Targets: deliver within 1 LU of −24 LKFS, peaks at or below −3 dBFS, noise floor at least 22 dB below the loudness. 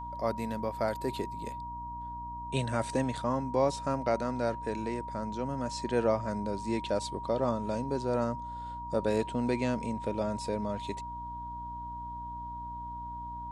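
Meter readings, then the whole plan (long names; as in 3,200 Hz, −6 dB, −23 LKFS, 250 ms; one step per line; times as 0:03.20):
mains hum 60 Hz; hum harmonics up to 300 Hz; level of the hum −44 dBFS; interfering tone 950 Hz; level of the tone −38 dBFS; integrated loudness −33.5 LKFS; sample peak −14.5 dBFS; target loudness −24.0 LKFS
→ mains-hum notches 60/120/180/240/300 Hz
notch filter 950 Hz, Q 30
level +9.5 dB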